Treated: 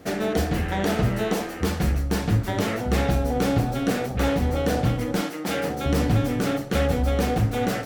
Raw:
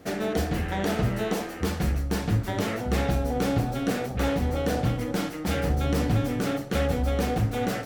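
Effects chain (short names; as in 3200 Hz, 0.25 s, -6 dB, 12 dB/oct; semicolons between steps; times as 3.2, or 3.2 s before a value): 5.21–5.86 HPF 220 Hz 12 dB/oct; gain +3 dB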